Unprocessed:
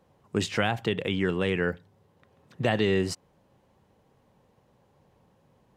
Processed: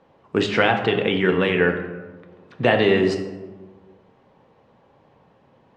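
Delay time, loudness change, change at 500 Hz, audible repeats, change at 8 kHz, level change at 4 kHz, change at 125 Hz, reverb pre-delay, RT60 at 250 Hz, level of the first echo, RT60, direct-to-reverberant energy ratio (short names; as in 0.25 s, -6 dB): none, +7.5 dB, +9.0 dB, none, n/a, +6.5 dB, +3.5 dB, 3 ms, 1.7 s, none, 1.4 s, 4.0 dB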